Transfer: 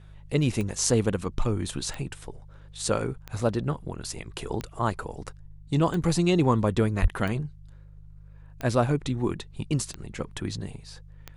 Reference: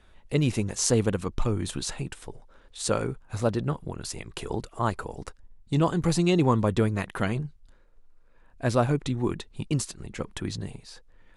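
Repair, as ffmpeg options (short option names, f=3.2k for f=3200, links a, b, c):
-filter_complex "[0:a]adeclick=t=4,bandreject=f=50.7:t=h:w=4,bandreject=f=101.4:t=h:w=4,bandreject=f=152.1:t=h:w=4,asplit=3[a][b][c];[a]afade=t=out:st=7.01:d=0.02[d];[b]highpass=f=140:w=0.5412,highpass=f=140:w=1.3066,afade=t=in:st=7.01:d=0.02,afade=t=out:st=7.13:d=0.02[e];[c]afade=t=in:st=7.13:d=0.02[f];[d][e][f]amix=inputs=3:normalize=0"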